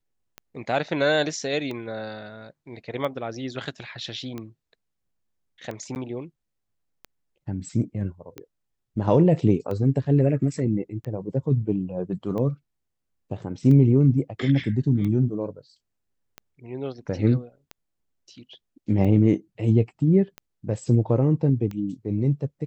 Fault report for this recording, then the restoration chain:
scratch tick 45 rpm −21 dBFS
0:05.95–0:05.96: drop-out 9.8 ms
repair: click removal
repair the gap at 0:05.95, 9.8 ms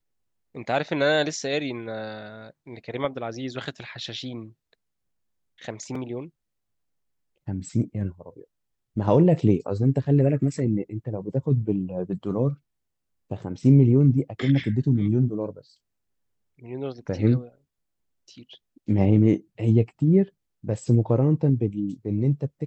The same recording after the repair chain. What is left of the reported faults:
none of them is left

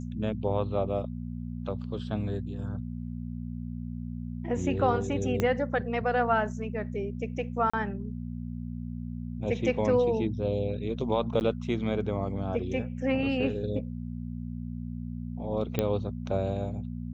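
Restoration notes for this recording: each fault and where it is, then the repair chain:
mains hum 60 Hz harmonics 4 −36 dBFS
0:05.40: click −14 dBFS
0:07.70–0:07.74: drop-out 35 ms
0:11.40–0:11.41: drop-out 9.9 ms
0:15.79: click −13 dBFS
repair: click removal
hum removal 60 Hz, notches 4
repair the gap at 0:07.70, 35 ms
repair the gap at 0:11.40, 9.9 ms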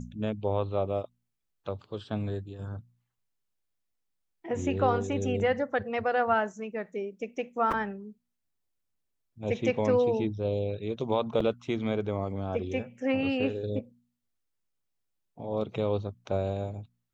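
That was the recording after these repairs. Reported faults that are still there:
0:05.40: click

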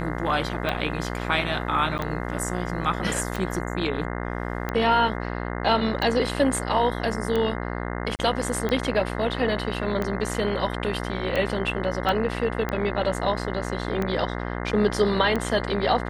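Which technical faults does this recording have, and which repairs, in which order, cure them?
mains buzz 60 Hz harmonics 35 −30 dBFS
scratch tick 45 rpm −14 dBFS
0:01.98–0:01.99: drop-out 9.7 ms
0:08.16–0:08.19: drop-out 29 ms
0:12.09: click −13 dBFS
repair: click removal
hum removal 60 Hz, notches 35
repair the gap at 0:01.98, 9.7 ms
repair the gap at 0:08.16, 29 ms

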